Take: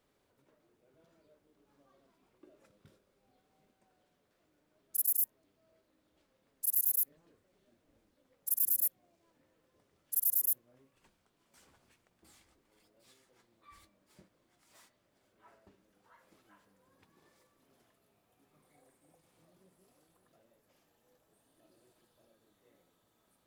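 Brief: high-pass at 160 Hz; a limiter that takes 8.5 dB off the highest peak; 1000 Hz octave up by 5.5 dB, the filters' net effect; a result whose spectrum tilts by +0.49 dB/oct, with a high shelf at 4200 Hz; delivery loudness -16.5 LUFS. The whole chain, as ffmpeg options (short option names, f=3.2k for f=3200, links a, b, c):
-af "highpass=160,equalizer=f=1k:t=o:g=7,highshelf=f=4.2k:g=-4,volume=23dB,alimiter=limit=-2dB:level=0:latency=1"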